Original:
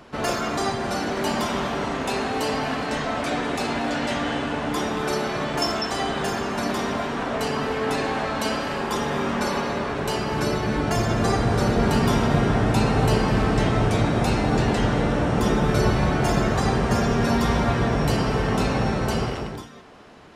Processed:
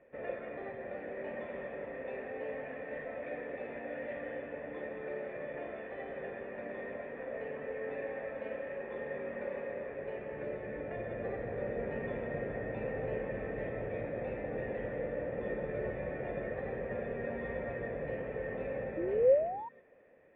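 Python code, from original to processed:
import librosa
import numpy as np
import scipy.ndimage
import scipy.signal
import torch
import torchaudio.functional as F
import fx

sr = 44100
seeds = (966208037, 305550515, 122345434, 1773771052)

y = fx.spec_paint(x, sr, seeds[0], shape='rise', start_s=18.97, length_s=0.72, low_hz=320.0, high_hz=970.0, level_db=-17.0)
y = fx.formant_cascade(y, sr, vowel='e')
y = y * librosa.db_to_amplitude(-3.5)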